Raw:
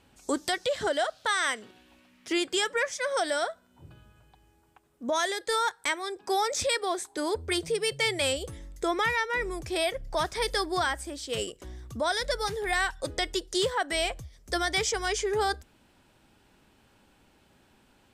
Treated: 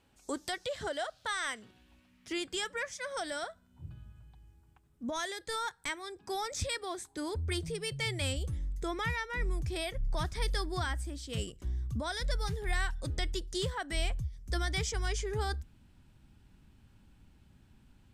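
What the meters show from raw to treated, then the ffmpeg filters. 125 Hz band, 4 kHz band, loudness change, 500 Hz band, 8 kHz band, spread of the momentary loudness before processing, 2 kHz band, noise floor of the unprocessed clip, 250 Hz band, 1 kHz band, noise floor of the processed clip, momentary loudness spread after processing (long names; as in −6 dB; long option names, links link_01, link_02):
+7.0 dB, −7.5 dB, −7.0 dB, −10.0 dB, −7.5 dB, 7 LU, −8.0 dB, −64 dBFS, −6.0 dB, −9.5 dB, −66 dBFS, 6 LU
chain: -af "asubboost=boost=7:cutoff=180,volume=-7.5dB"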